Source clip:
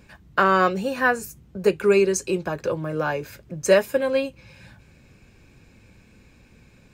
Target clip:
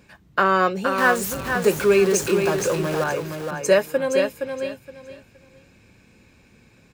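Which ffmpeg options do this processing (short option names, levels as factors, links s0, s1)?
-filter_complex "[0:a]asettb=1/sr,asplit=3[s0][s1][s2];[s0]atrim=end=0.984[s3];[s1]atrim=start=0.98:end=3.04,asetpts=PTS-STARTPTS,afade=t=in:d=0.004:c=qsin,afade=t=out:st=2.056:d=0.004:c=qsin,aeval=exprs='val(0)+0.5*0.0562*sgn(val(0))':c=same[s4];[s2]atrim=start=3.036[s5];[s3][s4]acrossfade=d=0.004:c1=hsin:c2=qsin[s6];[s6][s5]acrossfade=d=0.004:c1=qsin:c2=hsin,lowshelf=f=75:g=-11,aecho=1:1:468|936|1404:0.501|0.11|0.0243"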